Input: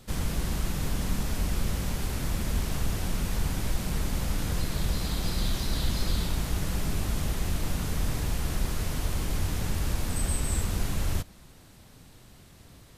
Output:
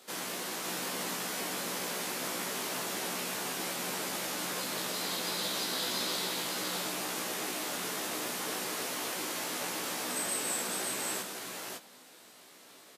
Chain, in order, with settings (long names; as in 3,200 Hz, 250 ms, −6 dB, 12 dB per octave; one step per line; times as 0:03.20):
Bessel high-pass filter 410 Hz, order 4
double-tracking delay 16 ms −4 dB
single-tap delay 553 ms −3.5 dB